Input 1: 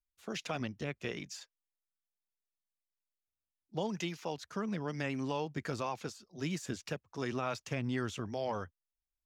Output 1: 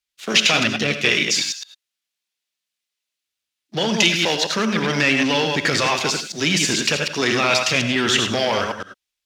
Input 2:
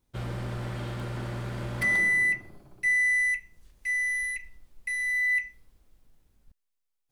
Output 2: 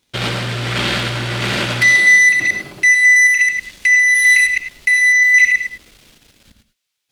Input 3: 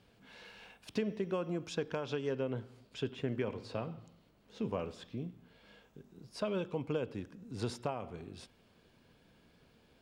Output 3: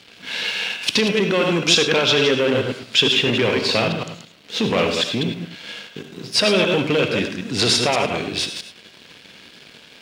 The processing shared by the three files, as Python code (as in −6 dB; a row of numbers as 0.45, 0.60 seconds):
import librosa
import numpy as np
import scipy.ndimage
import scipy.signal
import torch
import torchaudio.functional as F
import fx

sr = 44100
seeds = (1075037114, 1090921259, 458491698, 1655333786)

p1 = fx.reverse_delay(x, sr, ms=109, wet_db=-6)
p2 = fx.over_compress(p1, sr, threshold_db=-35.0, ratio=-0.5)
p3 = p1 + (p2 * 10.0 ** (1.0 / 20.0))
p4 = fx.leveller(p3, sr, passes=2)
p5 = fx.weighting(p4, sr, curve='D')
p6 = fx.rev_gated(p5, sr, seeds[0], gate_ms=120, shape='rising', drr_db=8.0)
y = p6 * 10.0 ** (-2 / 20.0) / np.max(np.abs(p6))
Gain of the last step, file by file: +3.0, +1.0, +6.0 decibels